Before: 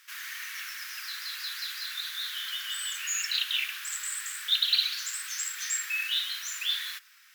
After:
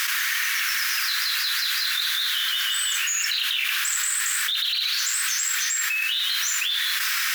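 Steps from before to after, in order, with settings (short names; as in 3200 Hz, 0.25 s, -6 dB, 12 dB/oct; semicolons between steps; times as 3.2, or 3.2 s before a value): limiter -23.5 dBFS, peak gain reduction 10 dB; fast leveller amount 100%; gain +5 dB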